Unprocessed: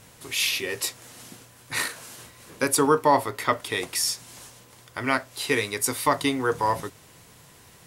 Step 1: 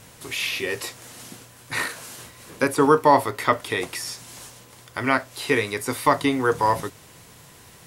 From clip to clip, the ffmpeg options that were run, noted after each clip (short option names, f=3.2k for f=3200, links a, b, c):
-filter_complex "[0:a]acrossover=split=2600[a][b];[b]acompressor=threshold=-34dB:ratio=4:attack=1:release=60[c];[a][c]amix=inputs=2:normalize=0,volume=3.5dB"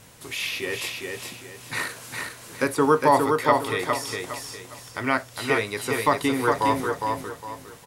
-af "aecho=1:1:409|818|1227|1636:0.631|0.202|0.0646|0.0207,volume=-2.5dB"